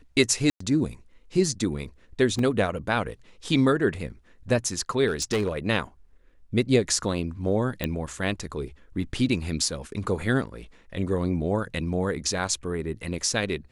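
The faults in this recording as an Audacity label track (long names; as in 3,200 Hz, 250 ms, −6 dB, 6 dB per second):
0.500000	0.600000	drop-out 104 ms
2.390000	2.390000	drop-out 2.4 ms
5.070000	5.570000	clipping −20 dBFS
7.840000	7.840000	click −13 dBFS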